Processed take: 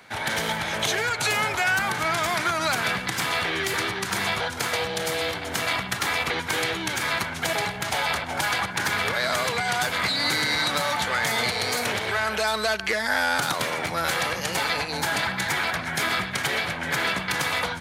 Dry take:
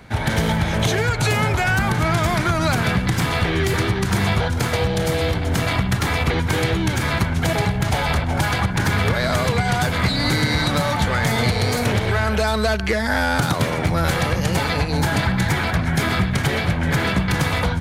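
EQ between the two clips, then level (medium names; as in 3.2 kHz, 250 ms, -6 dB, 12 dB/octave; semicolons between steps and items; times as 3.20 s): high-pass 940 Hz 6 dB/octave; 0.0 dB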